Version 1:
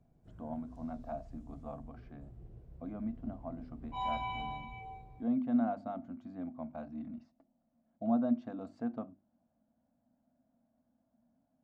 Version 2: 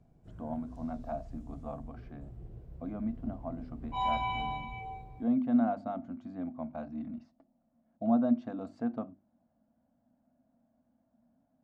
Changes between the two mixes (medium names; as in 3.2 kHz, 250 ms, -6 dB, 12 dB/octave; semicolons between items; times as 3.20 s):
speech +3.5 dB; background +5.0 dB